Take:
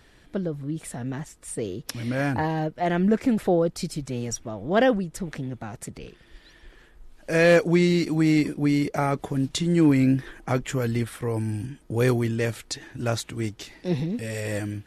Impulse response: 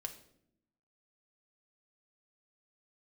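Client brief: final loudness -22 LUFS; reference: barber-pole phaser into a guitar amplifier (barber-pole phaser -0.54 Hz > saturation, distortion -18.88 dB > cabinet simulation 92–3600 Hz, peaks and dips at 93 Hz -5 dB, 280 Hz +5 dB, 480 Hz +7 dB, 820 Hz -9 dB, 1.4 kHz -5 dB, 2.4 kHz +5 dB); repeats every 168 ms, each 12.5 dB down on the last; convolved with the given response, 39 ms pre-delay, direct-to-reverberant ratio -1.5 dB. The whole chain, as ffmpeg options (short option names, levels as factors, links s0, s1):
-filter_complex "[0:a]aecho=1:1:168|336|504:0.237|0.0569|0.0137,asplit=2[s0][s1];[1:a]atrim=start_sample=2205,adelay=39[s2];[s1][s2]afir=irnorm=-1:irlink=0,volume=1.58[s3];[s0][s3]amix=inputs=2:normalize=0,asplit=2[s4][s5];[s5]afreqshift=-0.54[s6];[s4][s6]amix=inputs=2:normalize=1,asoftclip=threshold=0.355,highpass=92,equalizer=f=93:t=q:w=4:g=-5,equalizer=f=280:t=q:w=4:g=5,equalizer=f=480:t=q:w=4:g=7,equalizer=f=820:t=q:w=4:g=-9,equalizer=f=1400:t=q:w=4:g=-5,equalizer=f=2400:t=q:w=4:g=5,lowpass=f=3600:w=0.5412,lowpass=f=3600:w=1.3066,volume=0.944"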